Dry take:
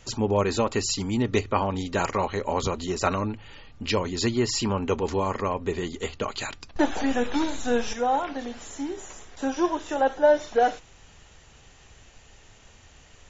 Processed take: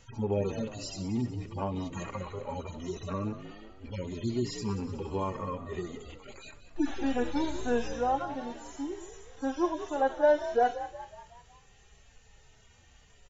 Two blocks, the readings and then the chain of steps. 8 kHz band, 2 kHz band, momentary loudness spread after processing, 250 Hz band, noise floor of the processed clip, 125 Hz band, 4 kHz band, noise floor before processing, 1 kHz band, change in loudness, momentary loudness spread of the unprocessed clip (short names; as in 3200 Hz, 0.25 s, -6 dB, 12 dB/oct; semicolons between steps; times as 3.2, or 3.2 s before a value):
n/a, -9.0 dB, 17 LU, -5.5 dB, -59 dBFS, -5.0 dB, -12.5 dB, -53 dBFS, -6.5 dB, -6.5 dB, 10 LU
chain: median-filter separation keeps harmonic; frequency-shifting echo 0.185 s, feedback 51%, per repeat +57 Hz, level -13 dB; gain -4.5 dB